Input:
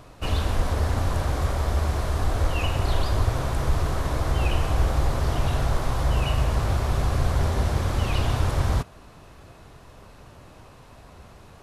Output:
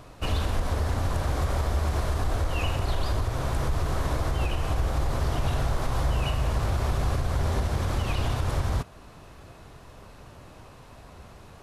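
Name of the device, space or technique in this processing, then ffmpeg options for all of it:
stacked limiters: -af "alimiter=limit=-13dB:level=0:latency=1:release=477,alimiter=limit=-17dB:level=0:latency=1:release=68"

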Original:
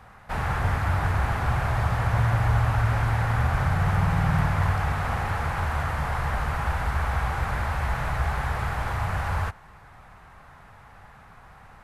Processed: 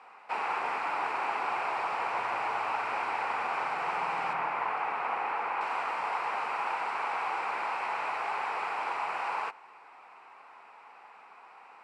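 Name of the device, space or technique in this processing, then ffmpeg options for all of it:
phone speaker on a table: -filter_complex "[0:a]asettb=1/sr,asplit=3[link_01][link_02][link_03];[link_01]atrim=end=4.334[link_04];[link_02]atrim=start=4.33:end=5.61,asetpts=PTS-STARTPTS,afade=type=in:duration=0.004:curve=qsin,afade=type=out:start_time=1.276:duration=0.004:curve=qsin,acrossover=split=2900[link_05][link_06];[link_06]acompressor=threshold=-56dB:ratio=4:attack=1:release=60[link_07];[link_05][link_07]amix=inputs=2:normalize=0[link_08];[link_03]atrim=start=5.606[link_09];[link_04][link_08]acrossfade=duration=0.004:curve1=hsin:curve2=qsin[link_10];[link_10][link_09]acrossfade=duration=0.004:curve1=qsin:curve2=hsin,highpass=frequency=350:width=0.5412,highpass=frequency=350:width=1.3066,equalizer=frequency=590:width_type=q:width=4:gain=-5,equalizer=frequency=930:width_type=q:width=4:gain=5,equalizer=frequency=1700:width_type=q:width=4:gain=-7,equalizer=frequency=2500:width_type=q:width=4:gain=9,equalizer=frequency=3500:width_type=q:width=4:gain=-7,equalizer=frequency=6400:width_type=q:width=4:gain=-9,lowpass=frequency=7500:width=0.5412,lowpass=frequency=7500:width=1.3066,volume=-2dB"

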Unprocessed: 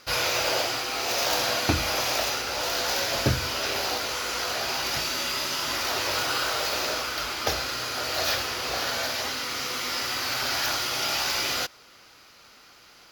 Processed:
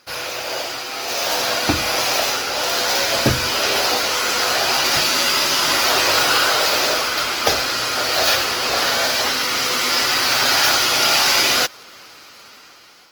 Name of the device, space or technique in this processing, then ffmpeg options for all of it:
video call: -af "highpass=frequency=160:poles=1,dynaudnorm=framelen=520:gausssize=5:maxgain=13dB" -ar 48000 -c:a libopus -b:a 20k

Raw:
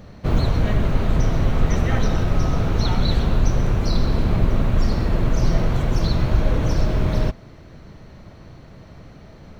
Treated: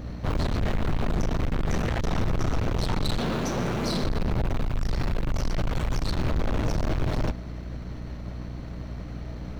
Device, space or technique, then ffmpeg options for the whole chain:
valve amplifier with mains hum: -filter_complex "[0:a]asplit=3[link_01][link_02][link_03];[link_01]afade=type=out:start_time=3.17:duration=0.02[link_04];[link_02]highpass=frequency=160:width=0.5412,highpass=frequency=160:width=1.3066,afade=type=in:start_time=3.17:duration=0.02,afade=type=out:start_time=4.03:duration=0.02[link_05];[link_03]afade=type=in:start_time=4.03:duration=0.02[link_06];[link_04][link_05][link_06]amix=inputs=3:normalize=0,asettb=1/sr,asplit=3[link_07][link_08][link_09];[link_07]atrim=end=4.544[link_10];[link_08]atrim=start=4.54:end=6.19,asetpts=PTS-STARTPTS,afade=type=in:duration=0.004:curve=qsin,afade=type=out:start_time=1.646:duration=0.004:curve=qsin,equalizer=frequency=230:width=0.4:gain=-5.5[link_11];[link_09]atrim=start=6.186[link_12];[link_10][link_11]acrossfade=duration=0.004:curve1=hsin:curve2=qsin[link_13];[link_13][link_12]acrossfade=duration=0.004:curve1=qsin:curve2=hsin,aeval=exprs='(tanh(25.1*val(0)+0.55)-tanh(0.55))/25.1':channel_layout=same,aeval=exprs='val(0)+0.01*(sin(2*PI*60*n/s)+sin(2*PI*2*60*n/s)/2+sin(2*PI*3*60*n/s)/3+sin(2*PI*4*60*n/s)/4+sin(2*PI*5*60*n/s)/5)':channel_layout=same,volume=4.5dB"

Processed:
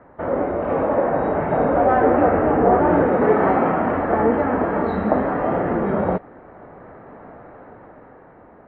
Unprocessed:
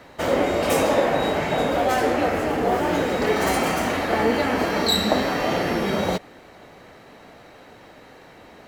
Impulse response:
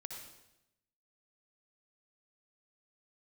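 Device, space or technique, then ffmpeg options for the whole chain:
action camera in a waterproof case: -filter_complex "[0:a]asettb=1/sr,asplit=3[link_01][link_02][link_03];[link_01]atrim=end=3.124[link_04];[link_02]atrim=start=3.12:end=3.89,asetpts=PTS-STARTPTS,afade=type=in:duration=0.004:curve=qsin,afade=type=out:start_time=0.766:duration=0.004:curve=qsin,highpass=100[link_05];[link_03]atrim=start=3.886[link_06];[link_04][link_05]acrossfade=duration=0.004:curve1=hsin:curve2=qsin[link_07];[link_07][link_06]acrossfade=duration=0.004:curve1=qsin:curve2=hsin,lowpass=frequency=1500:width=0.5412,lowpass=frequency=1500:width=1.3066,dynaudnorm=framelen=320:gausssize=9:maxgain=11.5dB,volume=-1dB" -ar 32000 -c:a aac -b:a 64k

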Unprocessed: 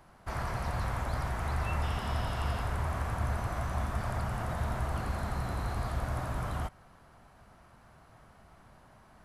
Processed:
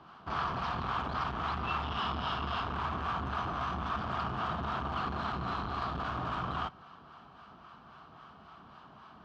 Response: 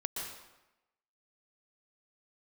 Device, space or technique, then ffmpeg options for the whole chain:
guitar amplifier with harmonic tremolo: -filter_complex "[0:a]acrossover=split=710[link_01][link_02];[link_01]aeval=exprs='val(0)*(1-0.5/2+0.5/2*cos(2*PI*3.7*n/s))':channel_layout=same[link_03];[link_02]aeval=exprs='val(0)*(1-0.5/2-0.5/2*cos(2*PI*3.7*n/s))':channel_layout=same[link_04];[link_03][link_04]amix=inputs=2:normalize=0,asoftclip=type=tanh:threshold=-34dB,highpass=110,equalizer=frequency=110:width_type=q:width=4:gain=-9,equalizer=frequency=560:width_type=q:width=4:gain=-8,equalizer=frequency=1200:width_type=q:width=4:gain=8,equalizer=frequency=2000:width_type=q:width=4:gain=-9,equalizer=frequency=3100:width_type=q:width=4:gain=7,lowpass=frequency=4600:width=0.5412,lowpass=frequency=4600:width=1.3066,volume=7dB"

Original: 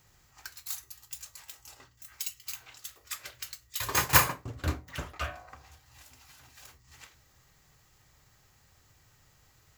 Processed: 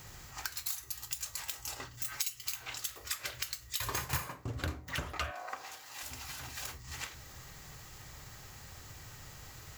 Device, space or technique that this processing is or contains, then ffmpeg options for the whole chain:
serial compression, peaks first: -filter_complex "[0:a]acompressor=threshold=-41dB:ratio=8,acompressor=threshold=-55dB:ratio=1.5,asettb=1/sr,asplit=3[link_01][link_02][link_03];[link_01]atrim=end=1.934[link_04];[link_02]atrim=start=1.93:end=2.41,asetpts=PTS-STARTPTS,afade=type=in:duration=0.004:curve=qsin,afade=type=out:start_time=0.476:duration=0.004:curve=qsin,aecho=1:1:7.1:0.84,atrim=end_sample=21168[link_05];[link_03]atrim=start=2.406[link_06];[link_04][link_05]acrossfade=duration=0.004:curve1=hsin:curve2=qsin[link_07];[link_07][link_06]acrossfade=duration=0.004:curve1=qsin:curve2=hsin,asettb=1/sr,asplit=3[link_08][link_09][link_10];[link_08]atrim=end=3.694[link_11];[link_09]atrim=start=3.69:end=4.22,asetpts=PTS-STARTPTS,afade=type=in:duration=0.004:curve=qsin,afade=type=out:start_time=0.526:duration=0.004:curve=qsin,asubboost=boost=11:cutoff=170[link_12];[link_10]atrim=start=4.216[link_13];[link_11][link_12]acrossfade=duration=0.004:curve1=hsin:curve2=qsin[link_14];[link_14][link_13]acrossfade=duration=0.004:curve1=qsin:curve2=hsin,asettb=1/sr,asplit=3[link_15][link_16][link_17];[link_15]atrim=end=5.314[link_18];[link_16]atrim=start=5.31:end=6.03,asetpts=PTS-STARTPTS,afade=type=in:duration=0.004:curve=qsin,afade=type=out:start_time=0.716:duration=0.004:curve=qsin,highpass=380[link_19];[link_17]atrim=start=6.026[link_20];[link_18][link_19]acrossfade=duration=0.004:curve1=hsin:curve2=qsin[link_21];[link_21][link_20]acrossfade=duration=0.004:curve1=qsin:curve2=hsin,volume=13dB"

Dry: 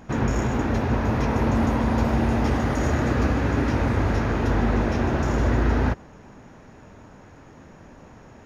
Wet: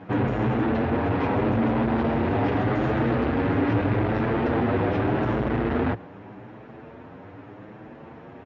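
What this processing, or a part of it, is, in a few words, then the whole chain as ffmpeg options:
barber-pole flanger into a guitar amplifier: -filter_complex "[0:a]asplit=2[link_01][link_02];[link_02]adelay=8,afreqshift=0.82[link_03];[link_01][link_03]amix=inputs=2:normalize=1,asoftclip=type=tanh:threshold=-25dB,highpass=110,equalizer=frequency=110:width_type=q:width=4:gain=6,equalizer=frequency=310:width_type=q:width=4:gain=5,equalizer=frequency=460:width_type=q:width=4:gain=4,equalizer=frequency=720:width_type=q:width=4:gain=3,lowpass=frequency=3500:width=0.5412,lowpass=frequency=3500:width=1.3066,volume=5.5dB"

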